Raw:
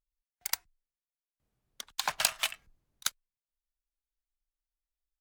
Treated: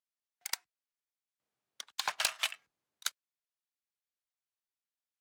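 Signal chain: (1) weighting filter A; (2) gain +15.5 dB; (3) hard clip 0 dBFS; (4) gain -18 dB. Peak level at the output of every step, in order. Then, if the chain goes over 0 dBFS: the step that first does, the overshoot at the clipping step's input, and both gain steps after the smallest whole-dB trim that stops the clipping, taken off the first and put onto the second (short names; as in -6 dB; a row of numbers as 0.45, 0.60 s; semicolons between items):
-9.0, +6.5, 0.0, -18.0 dBFS; step 2, 6.5 dB; step 2 +8.5 dB, step 4 -11 dB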